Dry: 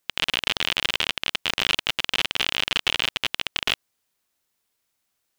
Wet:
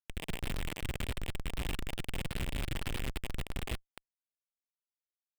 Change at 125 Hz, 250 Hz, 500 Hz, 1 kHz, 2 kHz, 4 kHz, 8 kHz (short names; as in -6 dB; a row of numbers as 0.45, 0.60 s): +5.0, -2.0, -8.0, -14.5, -18.0, -22.5, -12.0 dB